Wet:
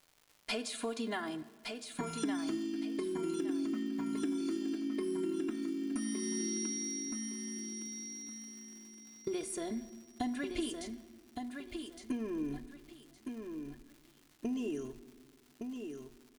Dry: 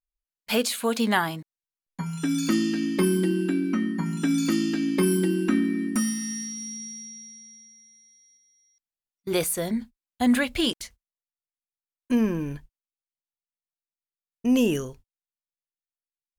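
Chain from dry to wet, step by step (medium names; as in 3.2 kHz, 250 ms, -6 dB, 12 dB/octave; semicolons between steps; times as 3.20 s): elliptic low-pass 10 kHz; peaking EQ 300 Hz +6 dB 2.2 oct; comb 2.9 ms, depth 83%; compression 10:1, threshold -32 dBFS, peak gain reduction 21 dB; crackle 230 per s -47 dBFS; feedback delay 1164 ms, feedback 25%, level -6 dB; simulated room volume 1900 m³, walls mixed, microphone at 0.42 m; trim -2.5 dB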